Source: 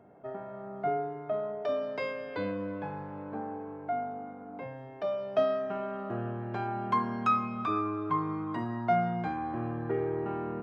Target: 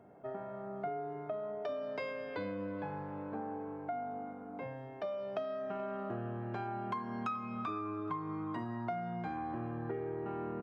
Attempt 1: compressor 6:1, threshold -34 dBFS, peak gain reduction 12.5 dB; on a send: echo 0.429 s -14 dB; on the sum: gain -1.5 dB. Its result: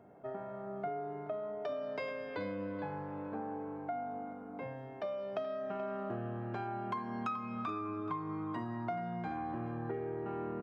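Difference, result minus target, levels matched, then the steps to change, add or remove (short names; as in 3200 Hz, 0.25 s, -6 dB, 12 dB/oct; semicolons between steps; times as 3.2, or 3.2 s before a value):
echo-to-direct +7.5 dB
change: echo 0.429 s -21.5 dB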